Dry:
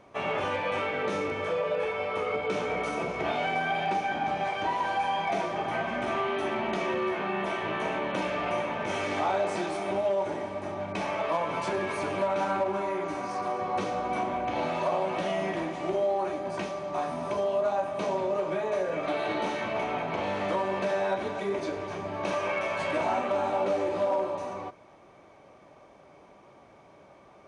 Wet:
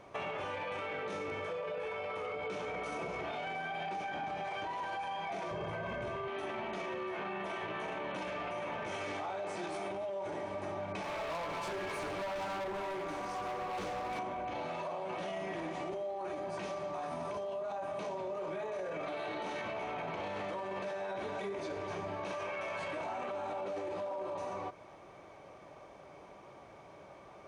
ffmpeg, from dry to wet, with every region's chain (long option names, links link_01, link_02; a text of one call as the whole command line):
ffmpeg -i in.wav -filter_complex "[0:a]asettb=1/sr,asplit=3[link_01][link_02][link_03];[link_01]atrim=end=5.514[link_04];[link_02]atrim=start=5.51:end=6.28,asetpts=PTS-STARTPTS,afade=type=in:duration=0.004:curve=qsin,afade=type=out:start_time=0.766:duration=0.004:curve=qsin,equalizer=frequency=120:width=0.31:gain=12,aecho=1:1:1.9:0.63,atrim=end_sample=33957[link_05];[link_03]atrim=start=6.276[link_06];[link_04][link_05]acrossfade=duration=0.004:curve1=hsin:curve2=qsin[link_07];[link_07][link_06]acrossfade=duration=0.004:curve1=qsin:curve2=hsin,asettb=1/sr,asplit=3[link_08][link_09][link_10];[link_08]atrim=end=11.034[link_11];[link_09]atrim=start=11.03:end=14.19,asetpts=PTS-STARTPTS,afade=type=in:duration=0.004:curve=qsin,afade=type=out:start_time=3.156:duration=0.004:curve=qsin,tremolo=f=260:d=0.571,asoftclip=type=hard:threshold=-33.5dB[link_12];[link_10]atrim=start=14.186[link_13];[link_11][link_12]acrossfade=duration=0.004:curve1=hsin:curve2=qsin[link_14];[link_14][link_13]acrossfade=duration=0.004:curve1=qsin:curve2=hsin,equalizer=frequency=240:width=2.6:gain=-4.5,alimiter=level_in=3dB:limit=-24dB:level=0:latency=1:release=17,volume=-3dB,acompressor=threshold=-37dB:ratio=6,volume=1dB" out.wav